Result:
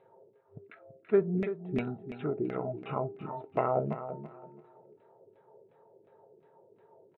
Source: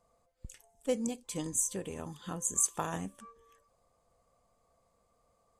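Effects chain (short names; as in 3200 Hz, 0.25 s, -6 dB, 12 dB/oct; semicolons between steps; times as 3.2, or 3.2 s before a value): FFT band-pass 120–5300 Hz; in parallel at 0 dB: compressor, threshold -50 dBFS, peak gain reduction 22.5 dB; on the sum: varispeed -22%; LFO low-pass saw down 2.8 Hz 250–2400 Hz; small resonant body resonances 440/640/1300 Hz, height 10 dB, ringing for 45 ms; on a send: feedback echo 0.333 s, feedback 23%, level -11 dB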